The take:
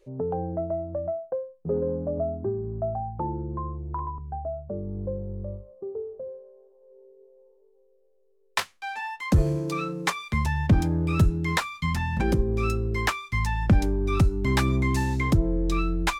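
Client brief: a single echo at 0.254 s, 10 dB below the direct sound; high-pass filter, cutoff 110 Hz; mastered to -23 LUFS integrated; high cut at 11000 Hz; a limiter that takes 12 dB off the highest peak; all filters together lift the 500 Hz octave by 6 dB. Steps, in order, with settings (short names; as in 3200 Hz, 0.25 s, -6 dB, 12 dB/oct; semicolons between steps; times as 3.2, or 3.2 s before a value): HPF 110 Hz; LPF 11000 Hz; bell 500 Hz +8 dB; limiter -19 dBFS; echo 0.254 s -10 dB; gain +5.5 dB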